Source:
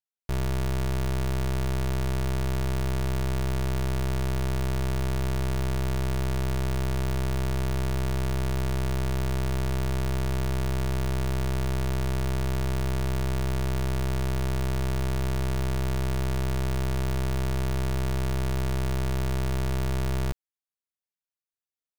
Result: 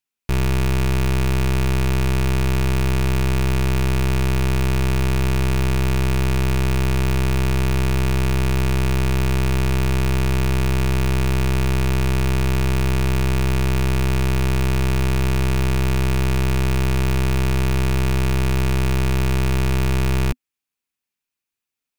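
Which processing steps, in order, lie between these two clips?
thirty-one-band EQ 250 Hz +6 dB, 630 Hz -6 dB, 2500 Hz +7 dB; gain +8 dB

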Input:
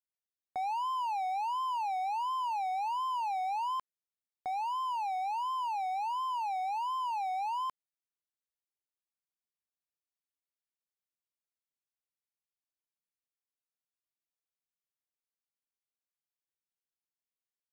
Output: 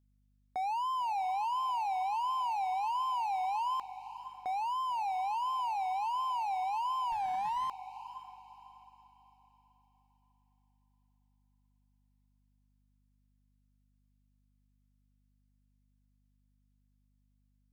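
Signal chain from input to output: hum 50 Hz, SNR 33 dB; diffused feedback echo 0.518 s, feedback 40%, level -13 dB; 7.12–7.69 running maximum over 5 samples

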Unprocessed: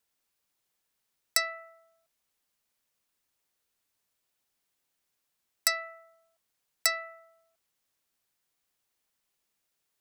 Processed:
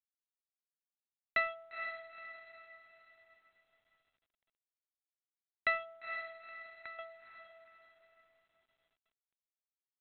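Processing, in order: Wiener smoothing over 25 samples; 5.77–6.99 compressor 12:1, threshold -38 dBFS, peak gain reduction 18.5 dB; diffused feedback echo 0.472 s, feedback 44%, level -7.5 dB; G.726 40 kbps 8000 Hz

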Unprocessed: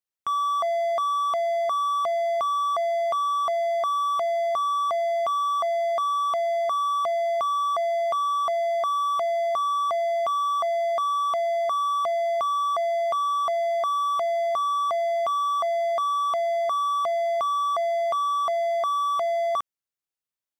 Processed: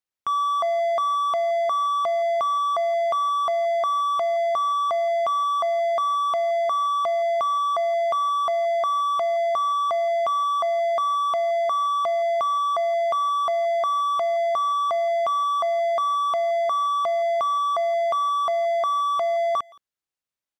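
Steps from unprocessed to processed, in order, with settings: high shelf 8600 Hz -7 dB; speakerphone echo 0.17 s, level -21 dB; gain +2 dB

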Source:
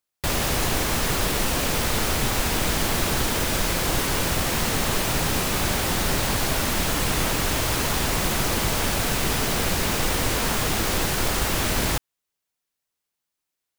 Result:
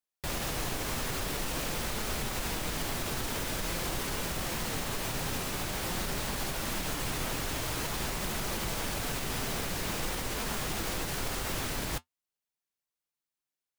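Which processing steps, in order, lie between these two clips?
limiter -14 dBFS, peak gain reduction 4 dB; flange 0.48 Hz, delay 4.6 ms, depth 3.4 ms, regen -66%; gain -5 dB

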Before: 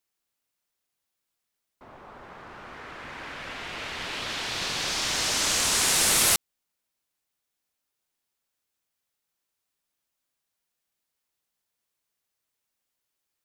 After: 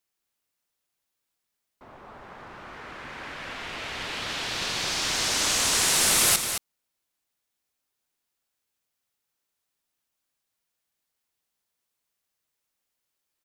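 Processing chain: echo 0.219 s -8 dB

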